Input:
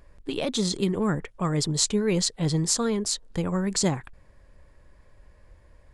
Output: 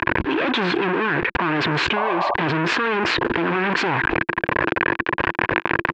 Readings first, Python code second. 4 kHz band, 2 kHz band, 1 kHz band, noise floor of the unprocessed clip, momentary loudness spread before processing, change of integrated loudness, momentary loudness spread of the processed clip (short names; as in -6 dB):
+3.5 dB, +22.0 dB, +16.5 dB, -56 dBFS, 5 LU, +5.0 dB, 2 LU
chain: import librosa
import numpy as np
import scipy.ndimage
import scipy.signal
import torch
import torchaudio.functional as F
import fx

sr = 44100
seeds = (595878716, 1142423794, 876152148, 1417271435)

y = fx.fuzz(x, sr, gain_db=45.0, gate_db=-48.0)
y = fx.cabinet(y, sr, low_hz=190.0, low_slope=12, high_hz=3100.0, hz=(200.0, 340.0, 590.0, 1000.0, 1600.0, 2500.0), db=(-7, 9, -5, 7, 10, 7))
y = fx.spec_paint(y, sr, seeds[0], shape='noise', start_s=1.96, length_s=0.38, low_hz=550.0, high_hz=1200.0, level_db=-12.0)
y = fx.env_flatten(y, sr, amount_pct=100)
y = y * 10.0 ** (-13.5 / 20.0)